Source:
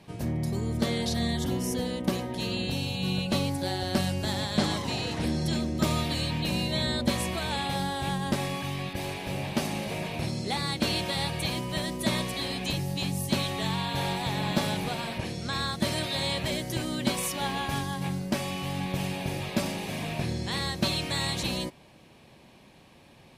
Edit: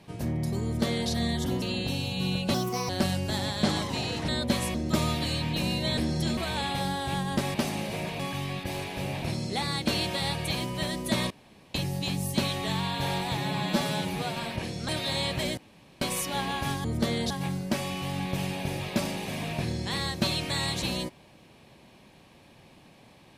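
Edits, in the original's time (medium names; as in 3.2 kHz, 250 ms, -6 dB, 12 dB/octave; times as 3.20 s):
0.64–1.10 s: copy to 17.91 s
1.62–2.45 s: delete
3.37–3.84 s: speed 133%
5.23–5.63 s: swap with 6.86–7.32 s
9.52–10.17 s: move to 8.49 s
12.25–12.69 s: room tone
14.32–14.98 s: stretch 1.5×
15.50–15.95 s: delete
16.64–17.08 s: room tone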